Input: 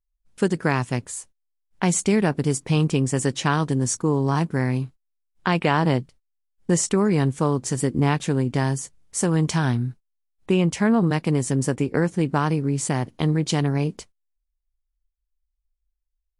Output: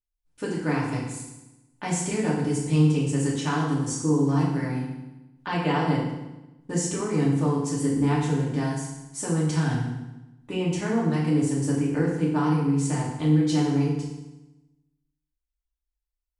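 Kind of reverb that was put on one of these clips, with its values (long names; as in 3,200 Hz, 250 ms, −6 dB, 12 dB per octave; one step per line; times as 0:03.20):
feedback delay network reverb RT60 1 s, low-frequency decay 1.25×, high-frequency decay 0.9×, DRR −6 dB
level −12 dB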